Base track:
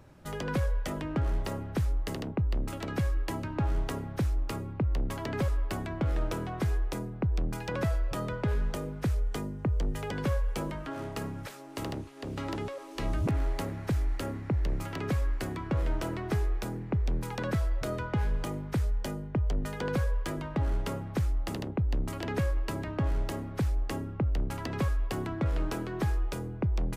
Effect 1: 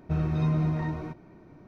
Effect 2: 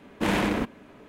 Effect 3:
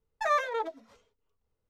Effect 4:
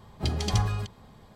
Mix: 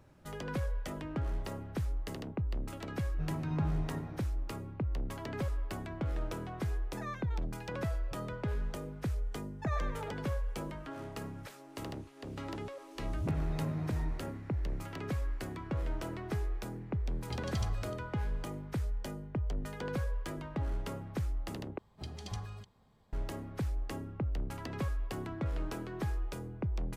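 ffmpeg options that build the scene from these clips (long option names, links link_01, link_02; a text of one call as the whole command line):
ffmpeg -i bed.wav -i cue0.wav -i cue1.wav -i cue2.wav -i cue3.wav -filter_complex "[1:a]asplit=2[link_01][link_02];[3:a]asplit=2[link_03][link_04];[4:a]asplit=2[link_05][link_06];[0:a]volume=-6dB[link_07];[link_01]asplit=2[link_08][link_09];[link_09]adelay=20,volume=-4dB[link_10];[link_08][link_10]amix=inputs=2:normalize=0[link_11];[link_03]highpass=780[link_12];[link_04]asplit=2[link_13][link_14];[link_14]adelay=103,lowpass=frequency=3700:poles=1,volume=-5.5dB,asplit=2[link_15][link_16];[link_16]adelay=103,lowpass=frequency=3700:poles=1,volume=0.41,asplit=2[link_17][link_18];[link_18]adelay=103,lowpass=frequency=3700:poles=1,volume=0.41,asplit=2[link_19][link_20];[link_20]adelay=103,lowpass=frequency=3700:poles=1,volume=0.41,asplit=2[link_21][link_22];[link_22]adelay=103,lowpass=frequency=3700:poles=1,volume=0.41[link_23];[link_13][link_15][link_17][link_19][link_21][link_23]amix=inputs=6:normalize=0[link_24];[link_07]asplit=2[link_25][link_26];[link_25]atrim=end=21.784[link_27];[link_06]atrim=end=1.35,asetpts=PTS-STARTPTS,volume=-15.5dB[link_28];[link_26]atrim=start=23.126[link_29];[link_11]atrim=end=1.67,asetpts=PTS-STARTPTS,volume=-13.5dB,afade=type=in:duration=0.004:curve=hsin,afade=type=out:start_time=1.666:duration=0.004:curve=hsin,adelay=136269S[link_30];[link_12]atrim=end=1.69,asetpts=PTS-STARTPTS,volume=-15dB,afade=type=in:duration=0.004:curve=hsin,afade=type=out:start_time=1.686:duration=0.004:curve=hsin,adelay=6760[link_31];[link_24]atrim=end=1.69,asetpts=PTS-STARTPTS,volume=-13.5dB,afade=type=in:duration=0.004:curve=hsin,afade=type=out:start_time=1.686:duration=0.004:curve=hsin,adelay=9410[link_32];[link_02]atrim=end=1.67,asetpts=PTS-STARTPTS,volume=-11dB,afade=type=in:duration=0.004:curve=hsin,afade=type=out:start_time=1.666:duration=0.004:curve=hsin,adelay=13170[link_33];[link_05]atrim=end=1.35,asetpts=PTS-STARTPTS,volume=-13dB,afade=type=in:duration=0.004:curve=hsin,afade=type=out:start_time=1.346:duration=0.004:curve=hsin,adelay=17070[link_34];[link_27][link_28]acrossfade=duration=0.004:curve1=hsin:curve2=hsin[link_35];[link_35][link_29]acrossfade=duration=0.004:curve1=hsin:curve2=hsin[link_36];[link_36][link_30][link_31][link_32][link_33][link_34]amix=inputs=6:normalize=0" out.wav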